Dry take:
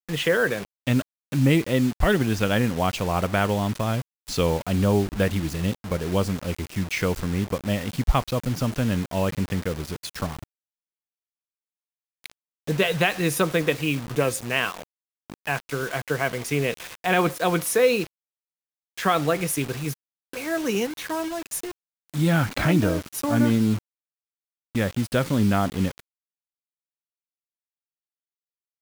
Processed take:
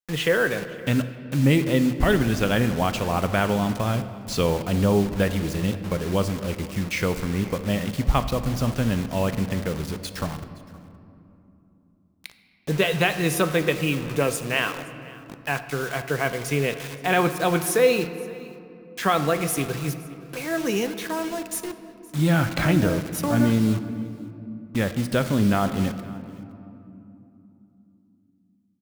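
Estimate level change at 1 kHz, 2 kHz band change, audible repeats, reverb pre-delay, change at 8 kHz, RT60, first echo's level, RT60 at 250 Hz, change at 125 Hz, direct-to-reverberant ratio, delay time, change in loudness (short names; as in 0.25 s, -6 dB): +0.5 dB, +0.5 dB, 1, 5 ms, 0.0 dB, 3.0 s, -22.0 dB, 4.7 s, +0.5 dB, 9.5 dB, 0.518 s, +0.5 dB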